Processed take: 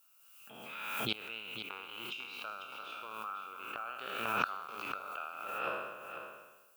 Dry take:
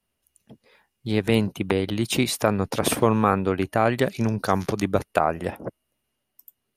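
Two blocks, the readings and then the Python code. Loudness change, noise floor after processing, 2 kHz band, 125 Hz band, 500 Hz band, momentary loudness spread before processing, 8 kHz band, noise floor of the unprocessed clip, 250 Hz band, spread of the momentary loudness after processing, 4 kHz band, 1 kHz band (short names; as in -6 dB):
-16.0 dB, -63 dBFS, -8.0 dB, -29.0 dB, -22.5 dB, 7 LU, -22.5 dB, -79 dBFS, -26.5 dB, 12 LU, -9.0 dB, -12.5 dB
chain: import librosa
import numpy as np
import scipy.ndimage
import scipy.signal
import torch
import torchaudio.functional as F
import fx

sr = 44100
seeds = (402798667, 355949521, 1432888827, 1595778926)

p1 = fx.spec_trails(x, sr, decay_s=1.19)
p2 = fx.double_bandpass(p1, sr, hz=1900.0, octaves=0.97)
p3 = fx.rider(p2, sr, range_db=3, speed_s=0.5)
p4 = fx.gate_flip(p3, sr, shuts_db=-28.0, range_db=-25)
p5 = fx.env_lowpass(p4, sr, base_hz=2100.0, full_db=-47.0)
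p6 = fx.dmg_noise_colour(p5, sr, seeds[0], colour='violet', level_db=-78.0)
p7 = p6 + fx.echo_single(p6, sr, ms=497, db=-9.0, dry=0)
p8 = fx.pre_swell(p7, sr, db_per_s=34.0)
y = p8 * librosa.db_to_amplitude(11.0)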